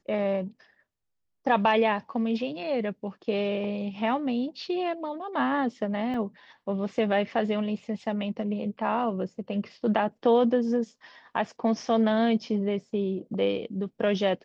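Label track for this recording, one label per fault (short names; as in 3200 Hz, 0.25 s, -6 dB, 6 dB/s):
6.140000	6.140000	gap 2.9 ms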